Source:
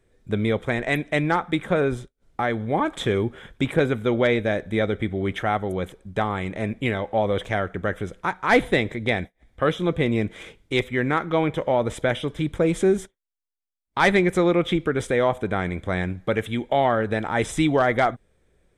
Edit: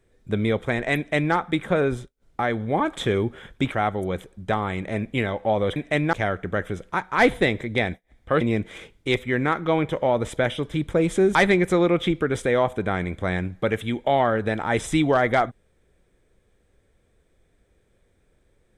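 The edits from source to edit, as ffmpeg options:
-filter_complex "[0:a]asplit=6[a][b][c][d][e][f];[a]atrim=end=3.722[g];[b]atrim=start=5.398:end=7.442[h];[c]atrim=start=0.968:end=1.342[i];[d]atrim=start=7.438:end=9.722[j];[e]atrim=start=10.058:end=13.002[k];[f]atrim=start=13.998[l];[g][h]acrossfade=d=0.004:c1=hsin:c2=hsin[m];[m][i]acrossfade=d=0.004:c1=hsin:c2=hsin[n];[n][j]acrossfade=d=0.004:c1=hsin:c2=hsin[o];[o][k]acrossfade=d=0.004:c1=hsin:c2=hsin[p];[p][l]acrossfade=d=0.004:c1=hsin:c2=hsin"

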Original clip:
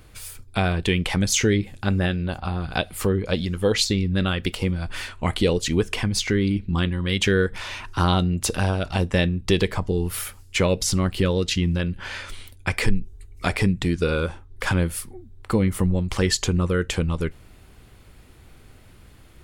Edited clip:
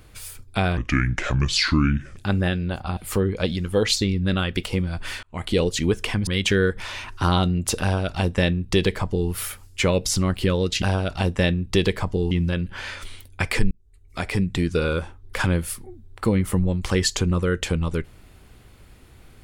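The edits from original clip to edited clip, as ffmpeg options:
-filter_complex "[0:a]asplit=9[a][b][c][d][e][f][g][h][i];[a]atrim=end=0.774[j];[b]atrim=start=0.77:end=1.75,asetpts=PTS-STARTPTS,asetrate=30870,aresample=44100,atrim=end_sample=61740,asetpts=PTS-STARTPTS[k];[c]atrim=start=1.746:end=2.552[l];[d]atrim=start=2.858:end=5.12,asetpts=PTS-STARTPTS,afade=t=out:st=2.258:d=0.004:c=hsin[m];[e]atrim=start=5.12:end=6.162,asetpts=PTS-STARTPTS,afade=t=in:d=0.36[n];[f]atrim=start=7.028:end=11.582[o];[g]atrim=start=8.568:end=10.062[p];[h]atrim=start=11.578:end=12.98,asetpts=PTS-STARTPTS,afade=t=out:st=1.398:d=0.004:c=hsin[q];[i]atrim=start=12.98,asetpts=PTS-STARTPTS,afade=t=in:d=0.87[r];[j][k]acrossfade=d=0.004:c1=hsin:c2=hsin[s];[s][l]acrossfade=d=0.004:c1=hsin:c2=hsin[t];[m][n]concat=n=2:v=0:a=1[u];[t][u]acrossfade=d=0.004:c1=hsin:c2=hsin[v];[v][o]acrossfade=d=0.004:c1=hsin:c2=hsin[w];[w][p]acrossfade=d=0.004:c1=hsin:c2=hsin[x];[q][r]concat=n=2:v=0:a=1[y];[x][y]acrossfade=d=0.004:c1=hsin:c2=hsin"

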